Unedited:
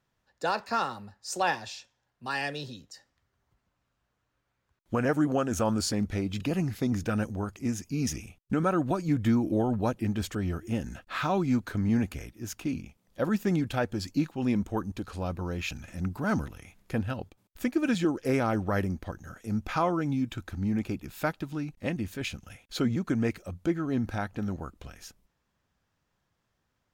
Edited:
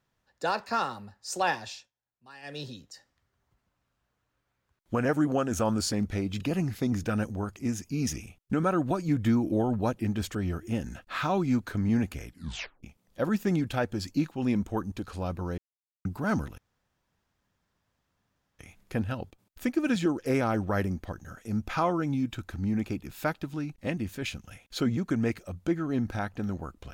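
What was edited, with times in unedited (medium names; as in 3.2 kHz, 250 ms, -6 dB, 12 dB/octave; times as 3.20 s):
1.72–2.61 s: dip -17.5 dB, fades 0.19 s
12.28 s: tape stop 0.55 s
15.58–16.05 s: mute
16.58 s: insert room tone 2.01 s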